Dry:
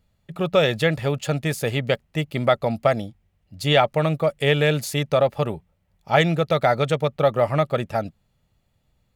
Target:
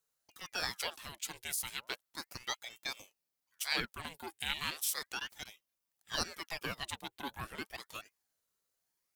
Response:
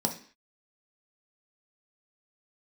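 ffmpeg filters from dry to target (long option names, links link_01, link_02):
-af "aderivative,aeval=exprs='val(0)*sin(2*PI*1600*n/s+1600*0.85/0.35*sin(2*PI*0.35*n/s))':channel_layout=same"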